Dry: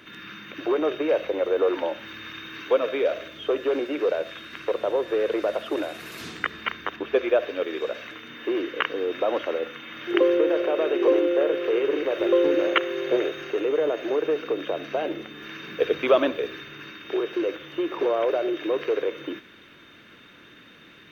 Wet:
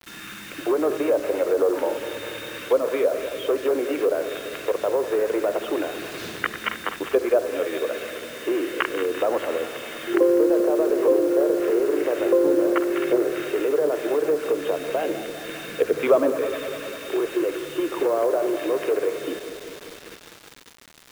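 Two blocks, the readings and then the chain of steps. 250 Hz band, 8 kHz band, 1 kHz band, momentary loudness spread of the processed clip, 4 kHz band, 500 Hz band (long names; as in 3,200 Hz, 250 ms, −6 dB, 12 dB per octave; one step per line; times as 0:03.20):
+3.0 dB, can't be measured, +1.5 dB, 13 LU, −1.0 dB, +2.0 dB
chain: feedback delay that plays each chunk backwards 100 ms, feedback 82%, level −12 dB
treble cut that deepens with the level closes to 1,100 Hz, closed at −17.5 dBFS
bit reduction 7 bits
level +1.5 dB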